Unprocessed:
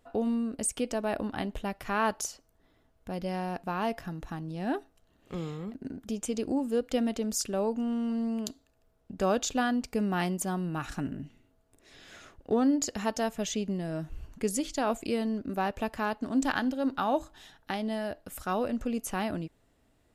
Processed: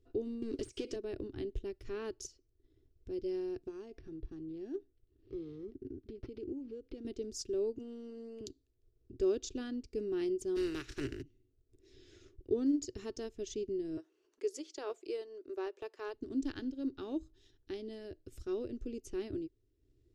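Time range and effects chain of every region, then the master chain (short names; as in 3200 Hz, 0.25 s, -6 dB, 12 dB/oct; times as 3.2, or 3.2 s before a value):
0.42–0.96 high shelf 3300 Hz +11.5 dB + compressor 16:1, threshold -34 dBFS + overdrive pedal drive 29 dB, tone 2300 Hz, clips at -19.5 dBFS
3.68–7.05 compressor 5:1, threshold -33 dBFS + decimation joined by straight lines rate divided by 6×
7.78–8.41 steep high-pass 250 Hz 72 dB/oct + comb 4.5 ms, depth 30%
10.55–11.21 spectral contrast lowered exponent 0.51 + bell 1700 Hz +10.5 dB 1.7 oct
12.66–13.26 companded quantiser 8-bit + bell 1100 Hz +4.5 dB 0.7 oct + mismatched tape noise reduction encoder only
13.97–16.14 HPF 420 Hz 24 dB/oct + bell 1000 Hz +9 dB 1.6 oct
whole clip: transient shaper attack -1 dB, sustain -7 dB; EQ curve 120 Hz 0 dB, 180 Hz -24 dB, 370 Hz +5 dB, 530 Hz -17 dB, 770 Hz -28 dB, 5500 Hz -9 dB, 12000 Hz -27 dB; gain +1.5 dB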